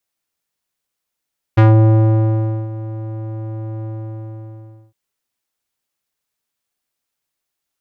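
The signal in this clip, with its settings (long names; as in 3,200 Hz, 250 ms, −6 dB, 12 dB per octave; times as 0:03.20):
subtractive voice square A2 12 dB per octave, low-pass 620 Hz, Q 0.86, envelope 2 octaves, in 0.17 s, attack 13 ms, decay 1.10 s, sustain −18 dB, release 1.08 s, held 2.28 s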